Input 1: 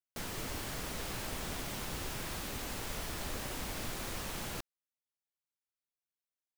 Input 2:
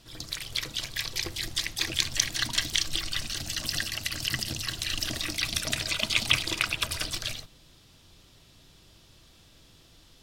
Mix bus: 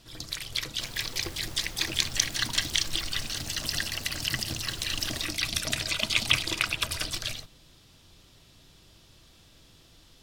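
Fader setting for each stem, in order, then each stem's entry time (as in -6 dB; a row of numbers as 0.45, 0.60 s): -6.5, 0.0 dB; 0.65, 0.00 s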